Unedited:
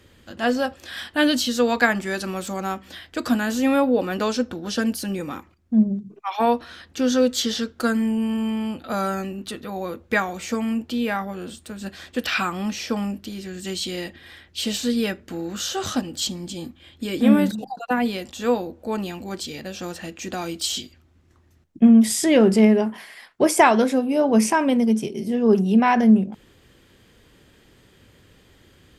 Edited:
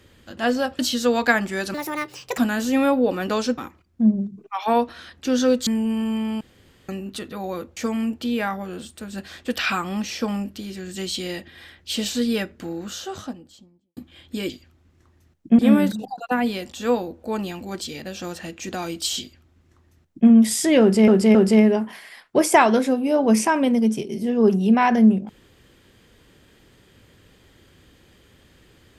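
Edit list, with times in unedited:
0.79–1.33 cut
2.28–3.28 speed 157%
4.48–5.3 cut
7.39–7.99 cut
8.73–9.21 room tone
10.09–10.45 cut
15.1–16.65 studio fade out
20.8–21.89 copy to 17.18
22.4–22.67 loop, 3 plays

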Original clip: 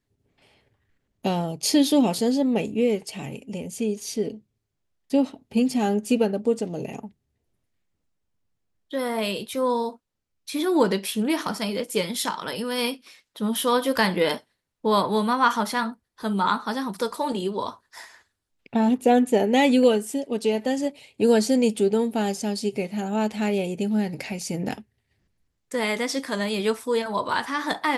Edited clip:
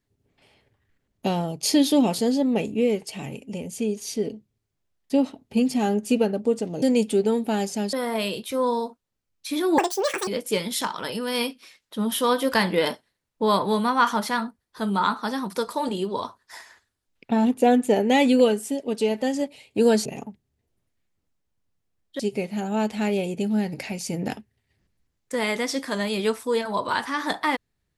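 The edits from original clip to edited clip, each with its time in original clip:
6.82–8.96 swap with 21.49–22.6
10.81–11.71 speed 182%

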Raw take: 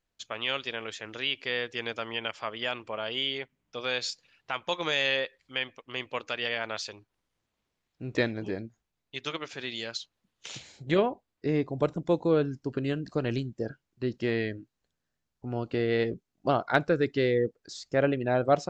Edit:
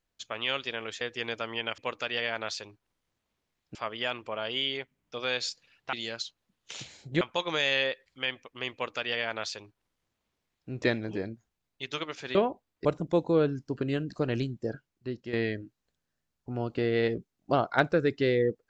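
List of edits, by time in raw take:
1.01–1.59 cut
6.06–8.03 copy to 2.36
9.68–10.96 move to 4.54
11.46–11.81 cut
13.69–14.29 fade out linear, to -10 dB

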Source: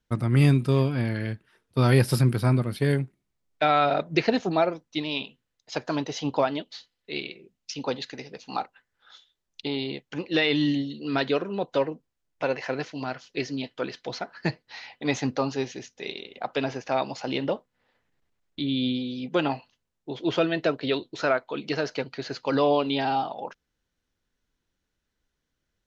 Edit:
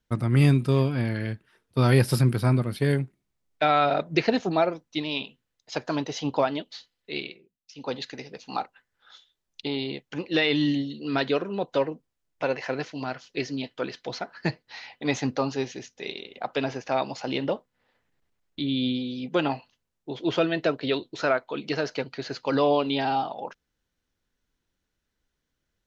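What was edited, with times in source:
7.23–7.98 dip -14 dB, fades 0.26 s

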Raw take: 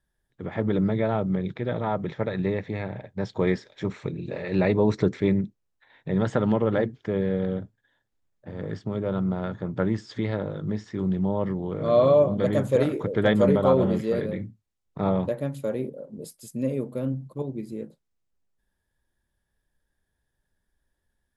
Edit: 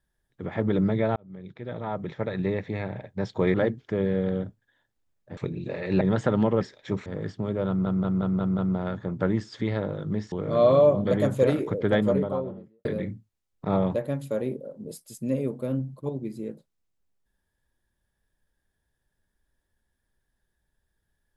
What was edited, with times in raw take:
1.16–3.04 fade in equal-power
3.54–3.99 swap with 6.7–8.53
4.63–6.1 cut
9.15 stutter 0.18 s, 6 plays
10.89–11.65 cut
12.97–14.18 studio fade out

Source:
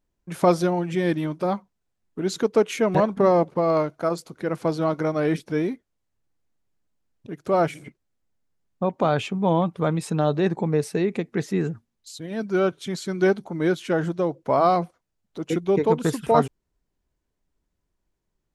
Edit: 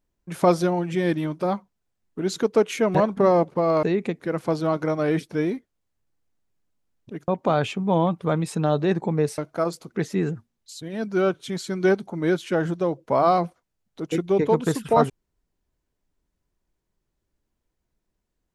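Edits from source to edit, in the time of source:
3.83–4.37 swap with 10.93–11.3
7.45–8.83 cut

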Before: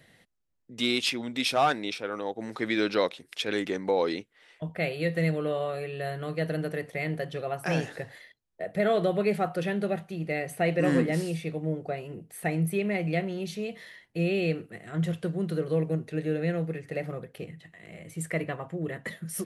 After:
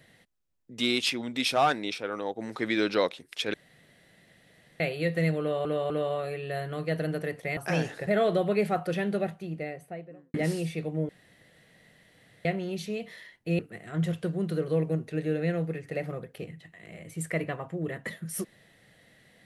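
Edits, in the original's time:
3.54–4.8 room tone
5.4–5.65 loop, 3 plays
7.07–7.55 cut
8.05–8.76 cut
9.82–11.03 studio fade out
11.78–13.14 room tone
14.28–14.59 cut

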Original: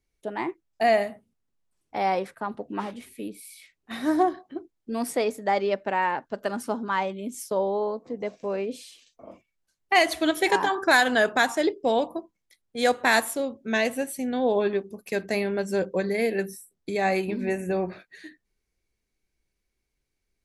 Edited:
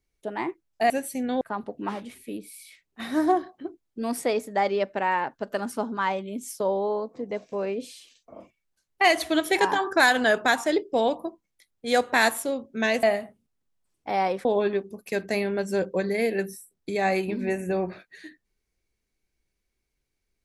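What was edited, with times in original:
0.9–2.32 swap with 13.94–14.45

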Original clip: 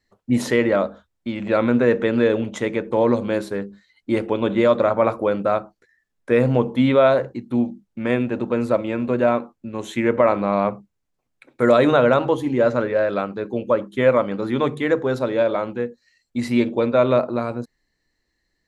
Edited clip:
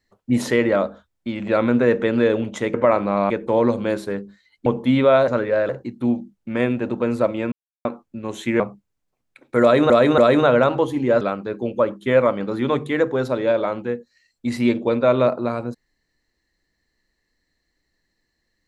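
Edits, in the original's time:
4.1–6.57 cut
9.02–9.35 mute
10.1–10.66 move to 2.74
11.68–11.96 loop, 3 plays
12.71–13.12 move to 7.19

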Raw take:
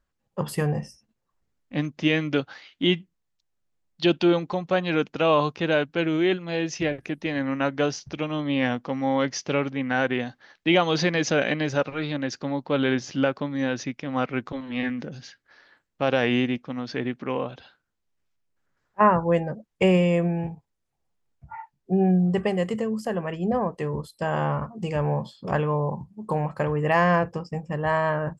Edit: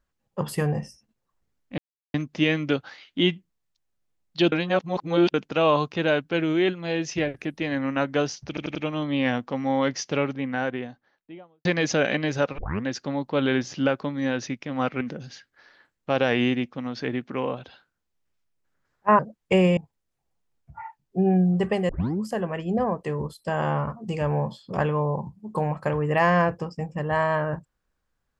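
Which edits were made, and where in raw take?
1.78 insert silence 0.36 s
4.16–4.98 reverse
8.12 stutter 0.09 s, 4 plays
9.44–11.02 studio fade out
11.95 tape start 0.27 s
14.38–14.93 cut
19.11–19.49 cut
20.07–20.51 cut
22.63 tape start 0.32 s

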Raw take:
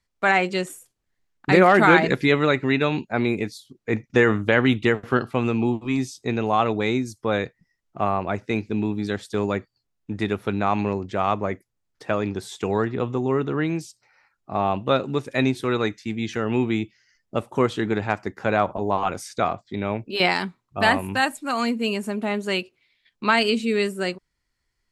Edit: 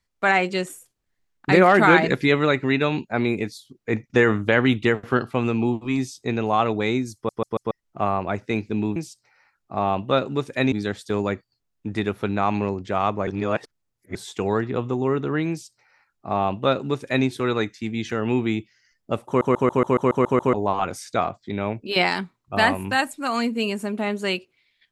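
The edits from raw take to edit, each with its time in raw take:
7.15 stutter in place 0.14 s, 4 plays
11.51–12.39 reverse
13.74–15.5 copy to 8.96
17.51 stutter in place 0.14 s, 9 plays

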